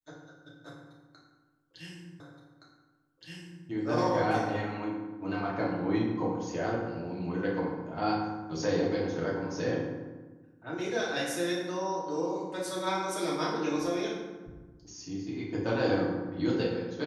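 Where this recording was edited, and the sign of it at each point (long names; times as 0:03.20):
0:02.20: the same again, the last 1.47 s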